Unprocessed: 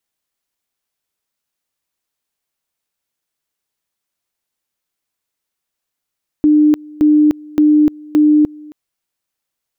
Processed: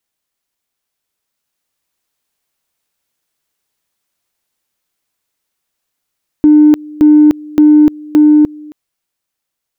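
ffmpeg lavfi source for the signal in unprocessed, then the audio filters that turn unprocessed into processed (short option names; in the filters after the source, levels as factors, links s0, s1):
-f lavfi -i "aevalsrc='pow(10,(-6.5-25*gte(mod(t,0.57),0.3))/20)*sin(2*PI*301*t)':d=2.28:s=44100"
-filter_complex "[0:a]dynaudnorm=f=340:g=9:m=1.68,asplit=2[s0][s1];[s1]asoftclip=type=tanh:threshold=0.266,volume=0.316[s2];[s0][s2]amix=inputs=2:normalize=0"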